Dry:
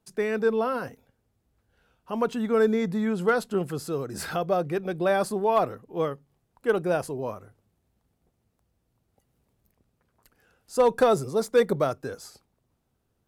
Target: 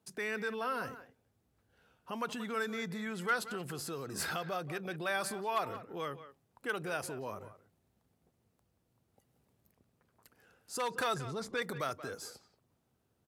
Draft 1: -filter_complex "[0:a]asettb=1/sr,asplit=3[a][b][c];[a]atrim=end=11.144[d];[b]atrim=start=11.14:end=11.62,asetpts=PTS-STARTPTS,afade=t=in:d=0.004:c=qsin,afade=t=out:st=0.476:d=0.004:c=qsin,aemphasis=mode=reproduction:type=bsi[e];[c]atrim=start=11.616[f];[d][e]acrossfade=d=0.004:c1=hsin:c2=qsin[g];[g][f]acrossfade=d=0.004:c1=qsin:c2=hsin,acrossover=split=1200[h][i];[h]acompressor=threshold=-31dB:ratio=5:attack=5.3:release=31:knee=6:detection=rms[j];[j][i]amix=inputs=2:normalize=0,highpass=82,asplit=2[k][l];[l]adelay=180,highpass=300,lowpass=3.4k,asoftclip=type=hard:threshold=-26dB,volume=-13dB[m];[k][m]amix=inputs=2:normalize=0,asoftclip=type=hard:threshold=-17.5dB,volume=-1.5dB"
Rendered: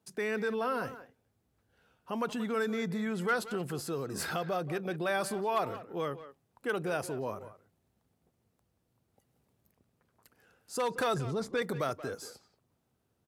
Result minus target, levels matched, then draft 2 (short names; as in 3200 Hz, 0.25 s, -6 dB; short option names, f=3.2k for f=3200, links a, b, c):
compressor: peak gain reduction -7 dB
-filter_complex "[0:a]asettb=1/sr,asplit=3[a][b][c];[a]atrim=end=11.144[d];[b]atrim=start=11.14:end=11.62,asetpts=PTS-STARTPTS,afade=t=in:d=0.004:c=qsin,afade=t=out:st=0.476:d=0.004:c=qsin,aemphasis=mode=reproduction:type=bsi[e];[c]atrim=start=11.616[f];[d][e]acrossfade=d=0.004:c1=hsin:c2=qsin[g];[g][f]acrossfade=d=0.004:c1=qsin:c2=hsin,acrossover=split=1200[h][i];[h]acompressor=threshold=-39.5dB:ratio=5:attack=5.3:release=31:knee=6:detection=rms[j];[j][i]amix=inputs=2:normalize=0,highpass=82,asplit=2[k][l];[l]adelay=180,highpass=300,lowpass=3.4k,asoftclip=type=hard:threshold=-26dB,volume=-13dB[m];[k][m]amix=inputs=2:normalize=0,asoftclip=type=hard:threshold=-17.5dB,volume=-1.5dB"